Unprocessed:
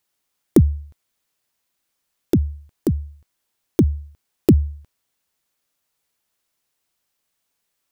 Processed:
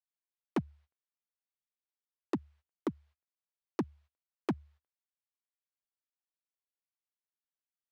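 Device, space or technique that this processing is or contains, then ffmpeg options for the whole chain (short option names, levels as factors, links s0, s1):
walkie-talkie: -af "highpass=560,lowpass=2800,asoftclip=type=hard:threshold=0.0562,agate=range=0.0501:threshold=0.001:ratio=16:detection=peak"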